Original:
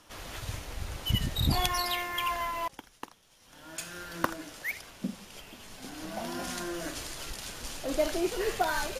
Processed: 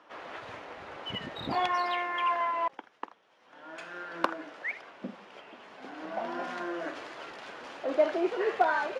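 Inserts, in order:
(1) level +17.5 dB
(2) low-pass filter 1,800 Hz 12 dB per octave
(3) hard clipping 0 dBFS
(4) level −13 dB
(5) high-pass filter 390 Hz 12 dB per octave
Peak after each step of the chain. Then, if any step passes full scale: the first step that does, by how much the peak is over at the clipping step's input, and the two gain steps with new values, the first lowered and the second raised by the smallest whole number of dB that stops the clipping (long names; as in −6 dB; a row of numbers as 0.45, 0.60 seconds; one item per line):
+10.5, +7.0, 0.0, −13.0, −9.0 dBFS
step 1, 7.0 dB
step 1 +10.5 dB, step 4 −6 dB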